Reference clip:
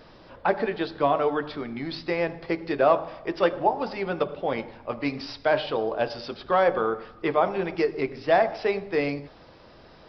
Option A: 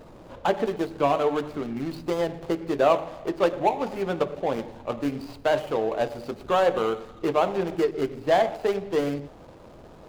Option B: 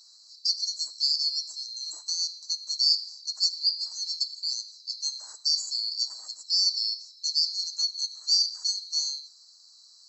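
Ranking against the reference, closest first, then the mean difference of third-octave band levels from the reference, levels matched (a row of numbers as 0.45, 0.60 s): A, B; 4.5, 24.0 dB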